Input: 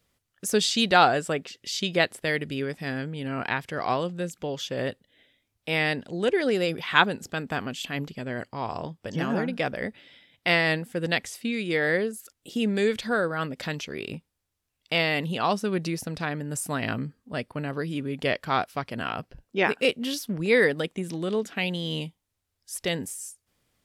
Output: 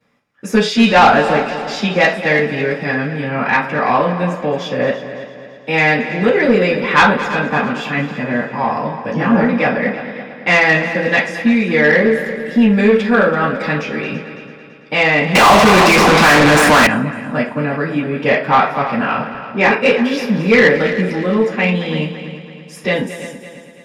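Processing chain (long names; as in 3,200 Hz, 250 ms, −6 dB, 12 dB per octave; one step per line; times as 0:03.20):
convolution reverb RT60 0.30 s, pre-delay 3 ms, DRR −11.5 dB
soft clipping −3.5 dBFS, distortion −14 dB
high-shelf EQ 9,300 Hz −10 dB
echo machine with several playback heads 111 ms, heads second and third, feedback 50%, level −13.5 dB
0:15.35–0:16.87: mid-hump overdrive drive 37 dB, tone 4,100 Hz, clips at −2.5 dBFS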